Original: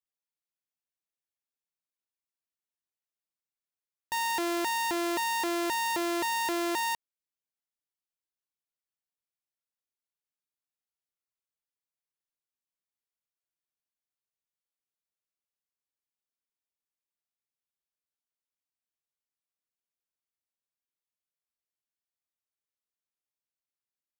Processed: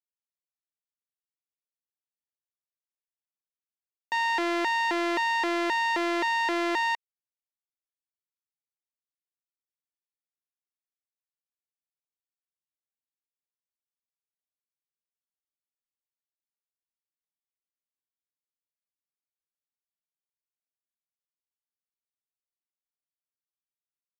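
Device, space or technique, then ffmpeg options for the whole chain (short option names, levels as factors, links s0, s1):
pocket radio on a weak battery: -af "highpass=270,lowpass=4000,aeval=exprs='sgn(val(0))*max(abs(val(0))-0.00224,0)':c=same,equalizer=f=2000:t=o:w=0.28:g=5.5,volume=1.58"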